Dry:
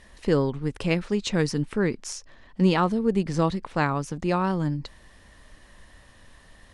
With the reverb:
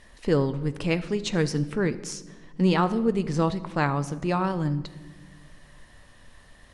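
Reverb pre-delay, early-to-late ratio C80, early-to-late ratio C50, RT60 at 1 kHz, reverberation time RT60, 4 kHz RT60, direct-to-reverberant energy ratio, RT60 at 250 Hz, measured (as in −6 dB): 7 ms, 17.0 dB, 15.5 dB, 1.1 s, 1.3 s, 0.90 s, 11.0 dB, 2.0 s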